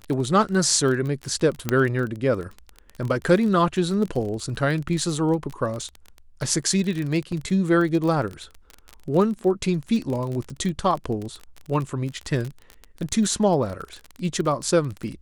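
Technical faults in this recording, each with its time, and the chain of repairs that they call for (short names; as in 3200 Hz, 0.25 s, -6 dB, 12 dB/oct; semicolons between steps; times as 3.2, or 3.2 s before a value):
crackle 25/s -27 dBFS
1.69 pop -7 dBFS
7.32 gap 3.9 ms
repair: de-click; interpolate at 7.32, 3.9 ms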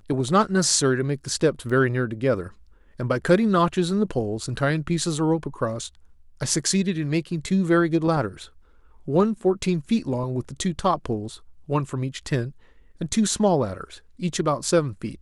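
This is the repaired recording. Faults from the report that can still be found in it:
1.69 pop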